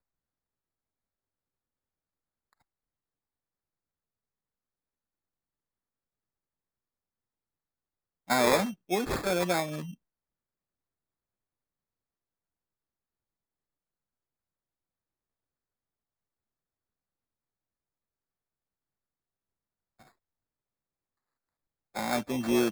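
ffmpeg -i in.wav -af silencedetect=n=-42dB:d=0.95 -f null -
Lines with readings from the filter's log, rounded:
silence_start: 0.00
silence_end: 8.30 | silence_duration: 8.30
silence_start: 9.94
silence_end: 21.95 | silence_duration: 12.01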